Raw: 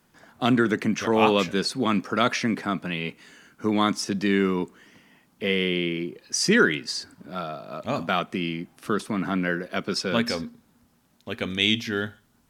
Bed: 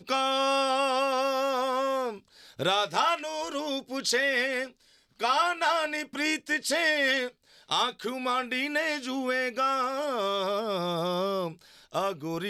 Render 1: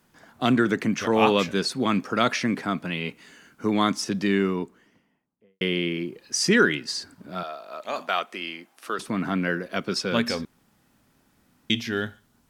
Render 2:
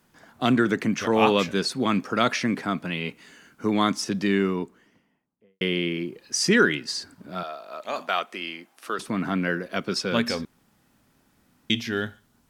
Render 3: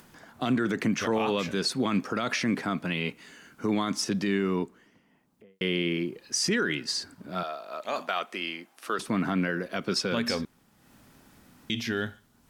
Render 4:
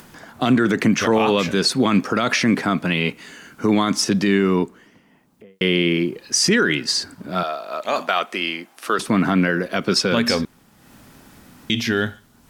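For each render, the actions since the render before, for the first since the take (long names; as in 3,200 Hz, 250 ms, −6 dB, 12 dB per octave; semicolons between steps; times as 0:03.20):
0:04.16–0:05.61: fade out and dull; 0:07.43–0:08.99: high-pass filter 530 Hz; 0:10.45–0:11.70: fill with room tone
no processing that can be heard
brickwall limiter −17.5 dBFS, peak gain reduction 11.5 dB; upward compression, threshold −47 dBFS
level +9.5 dB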